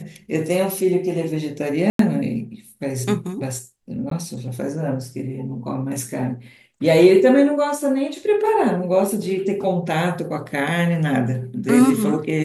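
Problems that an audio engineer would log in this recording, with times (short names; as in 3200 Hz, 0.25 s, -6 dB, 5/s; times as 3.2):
1.9–1.99 gap 93 ms
4.1–4.11 gap 13 ms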